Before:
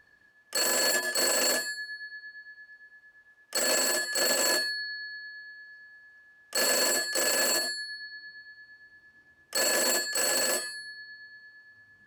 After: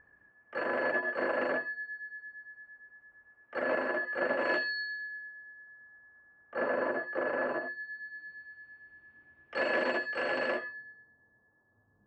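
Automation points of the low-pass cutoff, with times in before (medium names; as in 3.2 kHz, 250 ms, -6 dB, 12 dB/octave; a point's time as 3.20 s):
low-pass 24 dB/octave
4.36 s 1.9 kHz
4.78 s 4.1 kHz
5.33 s 1.6 kHz
7.57 s 1.6 kHz
8.33 s 2.6 kHz
10.50 s 2.6 kHz
11.13 s 1 kHz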